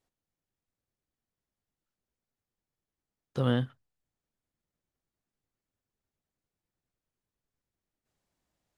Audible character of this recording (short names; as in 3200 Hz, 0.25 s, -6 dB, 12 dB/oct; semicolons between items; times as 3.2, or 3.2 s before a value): noise floor -92 dBFS; spectral tilt -6.5 dB/oct